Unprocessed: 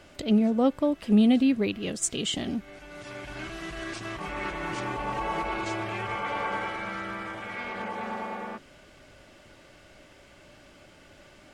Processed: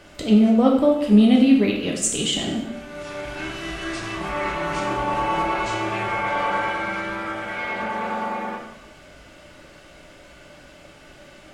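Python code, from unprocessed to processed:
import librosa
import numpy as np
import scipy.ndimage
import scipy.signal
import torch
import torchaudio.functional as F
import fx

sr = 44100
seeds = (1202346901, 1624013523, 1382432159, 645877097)

y = fx.rev_plate(x, sr, seeds[0], rt60_s=0.85, hf_ratio=0.9, predelay_ms=0, drr_db=-1.0)
y = F.gain(torch.from_numpy(y), 3.5).numpy()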